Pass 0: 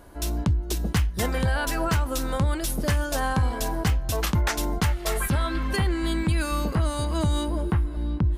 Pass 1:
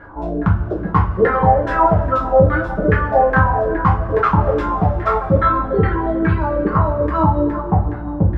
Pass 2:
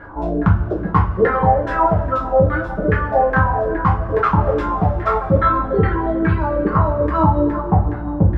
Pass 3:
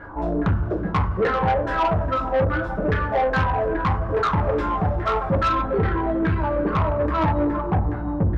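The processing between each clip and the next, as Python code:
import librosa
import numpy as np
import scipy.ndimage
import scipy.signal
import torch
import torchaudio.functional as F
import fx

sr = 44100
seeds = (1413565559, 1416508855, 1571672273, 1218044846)

y1 = fx.filter_lfo_lowpass(x, sr, shape='saw_down', hz=2.4, low_hz=390.0, high_hz=1700.0, q=5.9)
y1 = fx.dereverb_blind(y1, sr, rt60_s=1.5)
y1 = fx.rev_double_slope(y1, sr, seeds[0], early_s=0.31, late_s=2.8, knee_db=-18, drr_db=-4.5)
y1 = y1 * 10.0 ** (2.5 / 20.0)
y2 = fx.rider(y1, sr, range_db=4, speed_s=2.0)
y2 = y2 * 10.0 ** (-1.0 / 20.0)
y3 = 10.0 ** (-14.0 / 20.0) * np.tanh(y2 / 10.0 ** (-14.0 / 20.0))
y3 = y3 * 10.0 ** (-1.5 / 20.0)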